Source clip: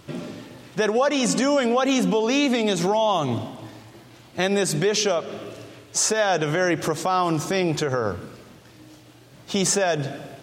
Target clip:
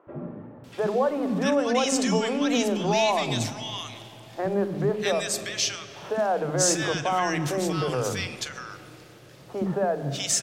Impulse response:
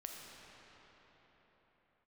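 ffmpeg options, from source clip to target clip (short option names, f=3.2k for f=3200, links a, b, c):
-filter_complex "[0:a]acontrast=28,acrossover=split=320|1400[a][b][c];[a]adelay=70[d];[c]adelay=640[e];[d][b][e]amix=inputs=3:normalize=0,asplit=2[f][g];[1:a]atrim=start_sample=2205,adelay=42[h];[g][h]afir=irnorm=-1:irlink=0,volume=-11.5dB[i];[f][i]amix=inputs=2:normalize=0,volume=-6.5dB"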